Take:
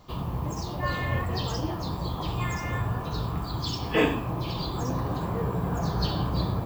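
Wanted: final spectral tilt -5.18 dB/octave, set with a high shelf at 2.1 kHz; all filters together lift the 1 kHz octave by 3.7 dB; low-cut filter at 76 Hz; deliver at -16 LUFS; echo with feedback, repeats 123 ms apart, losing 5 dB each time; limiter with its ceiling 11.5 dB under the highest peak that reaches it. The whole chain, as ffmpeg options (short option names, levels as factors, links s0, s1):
-af "highpass=76,equalizer=f=1000:t=o:g=3.5,highshelf=f=2100:g=4,alimiter=limit=0.0944:level=0:latency=1,aecho=1:1:123|246|369|492|615|738|861:0.562|0.315|0.176|0.0988|0.0553|0.031|0.0173,volume=4.47"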